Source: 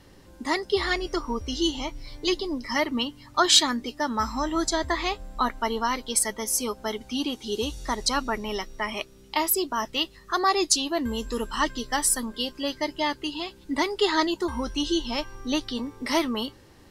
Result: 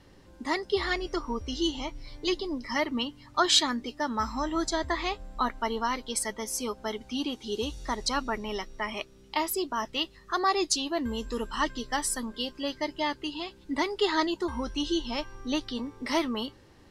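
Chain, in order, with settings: treble shelf 10 kHz -11.5 dB; trim -3 dB

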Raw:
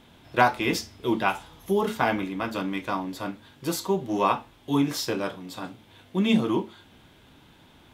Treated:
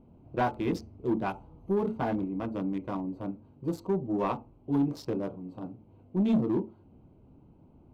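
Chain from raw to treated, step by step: local Wiener filter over 25 samples; tilt shelf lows +7 dB, about 830 Hz; saturation -13 dBFS, distortion -15 dB; trim -6 dB

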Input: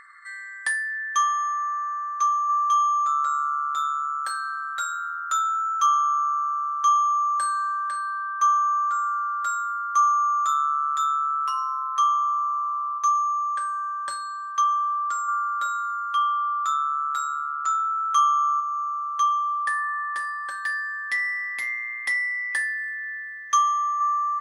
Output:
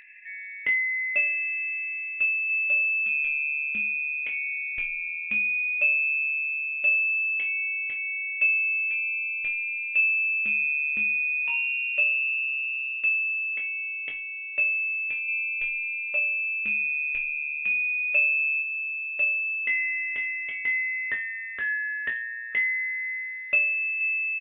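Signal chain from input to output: doubling 21 ms -5.5 dB; frequency inversion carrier 3.8 kHz; trim -1.5 dB

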